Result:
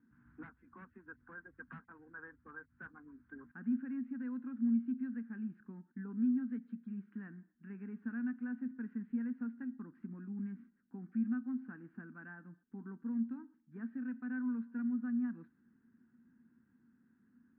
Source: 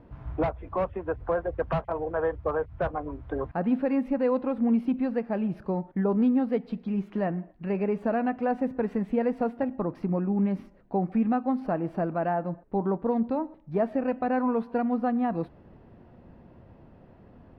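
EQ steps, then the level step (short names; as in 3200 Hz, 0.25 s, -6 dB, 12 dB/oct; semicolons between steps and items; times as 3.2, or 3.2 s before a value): double band-pass 610 Hz, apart 2.7 oct; air absorption 110 m; -6.5 dB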